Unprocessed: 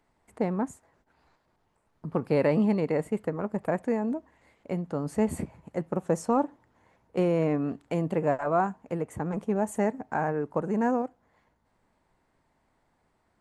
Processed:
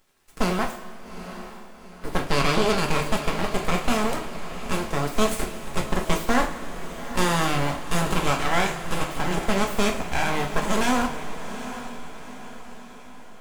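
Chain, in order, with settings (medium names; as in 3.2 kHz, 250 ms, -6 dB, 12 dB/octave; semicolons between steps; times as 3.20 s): spectral contrast reduction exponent 0.58; 2.24–2.77 s: low-pass 7.2 kHz; in parallel at -1 dB: peak limiter -17.5 dBFS, peak gain reduction 7 dB; on the sum: full-wave rectifier; echo that smears into a reverb 821 ms, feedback 49%, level -12 dB; two-slope reverb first 0.33 s, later 2.6 s, from -16 dB, DRR 1.5 dB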